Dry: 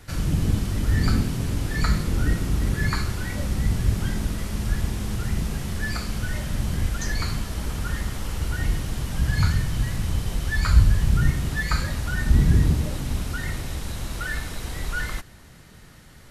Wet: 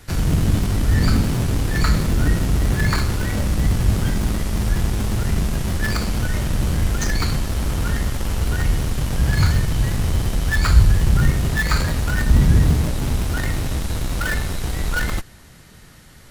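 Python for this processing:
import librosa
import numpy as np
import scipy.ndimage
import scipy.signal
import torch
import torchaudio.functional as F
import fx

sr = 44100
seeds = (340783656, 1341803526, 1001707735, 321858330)

p1 = fx.high_shelf(x, sr, hz=3400.0, db=3.0)
p2 = fx.schmitt(p1, sr, flips_db=-28.0)
p3 = p1 + F.gain(torch.from_numpy(p2), -5.5).numpy()
y = F.gain(torch.from_numpy(p3), 2.0).numpy()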